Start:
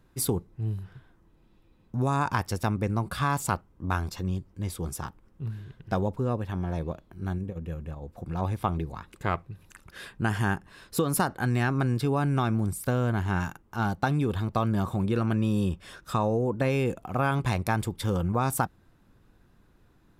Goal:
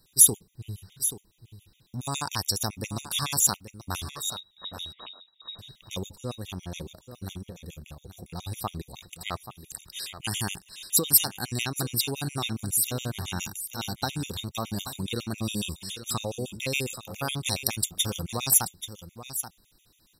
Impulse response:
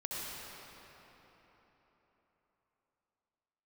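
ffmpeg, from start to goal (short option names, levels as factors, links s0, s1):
-filter_complex "[0:a]aexciter=amount=10.9:drive=3.3:freq=2500,asettb=1/sr,asplit=3[s0][s1][s2];[s0]atrim=end=4.104[s3];[s1]atrim=start=4.1:end=5.59,asetpts=PTS-STARTPTS,afade=t=in:d=0.004:c=qsin,afade=t=out:st=1.486:d=0.004:c=qsin,lowpass=f=3300:t=q:w=0.5098,lowpass=f=3300:t=q:w=0.6013,lowpass=f=3300:t=q:w=0.9,lowpass=f=3300:t=q:w=2.563,afreqshift=-3900[s4];[s2]atrim=start=5.586[s5];[s3][s4]acrossfade=d=0.004:c1=hsin:c2=qsin[s6];[s6][s5]acrossfade=d=0.004:c1=qsin:c2=hsin,asplit=2[s7][s8];[s8]aecho=0:1:832:0.266[s9];[s7][s9]amix=inputs=2:normalize=0,afftfilt=real='re*gt(sin(2*PI*7.2*pts/sr)*(1-2*mod(floor(b*sr/1024/1900),2)),0)':imag='im*gt(sin(2*PI*7.2*pts/sr)*(1-2*mod(floor(b*sr/1024/1900),2)),0)':win_size=1024:overlap=0.75,volume=0.596"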